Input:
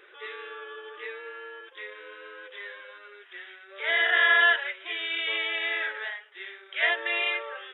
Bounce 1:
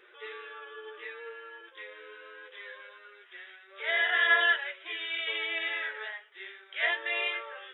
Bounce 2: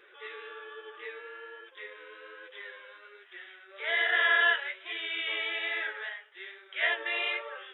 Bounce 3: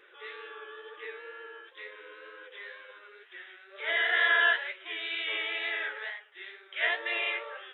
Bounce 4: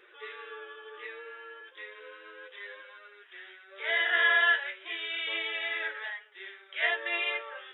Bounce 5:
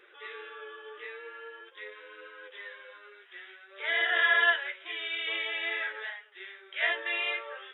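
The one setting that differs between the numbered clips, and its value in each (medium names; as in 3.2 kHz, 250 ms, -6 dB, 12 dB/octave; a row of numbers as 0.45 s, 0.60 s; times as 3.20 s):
flange, rate: 0.22 Hz, 1.2 Hz, 2.1 Hz, 0.33 Hz, 0.49 Hz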